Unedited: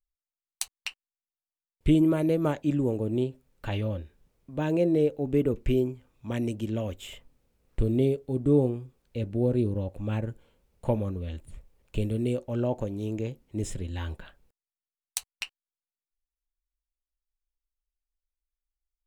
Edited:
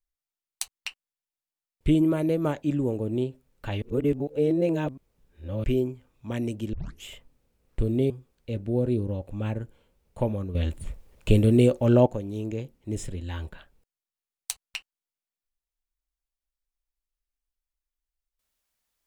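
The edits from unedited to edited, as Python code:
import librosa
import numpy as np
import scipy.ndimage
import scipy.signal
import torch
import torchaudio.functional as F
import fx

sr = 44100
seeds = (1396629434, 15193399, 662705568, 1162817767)

y = fx.edit(x, sr, fx.reverse_span(start_s=3.82, length_s=1.82),
    fx.tape_start(start_s=6.73, length_s=0.31),
    fx.cut(start_s=8.1, length_s=0.67),
    fx.clip_gain(start_s=11.22, length_s=1.51, db=9.5), tone=tone)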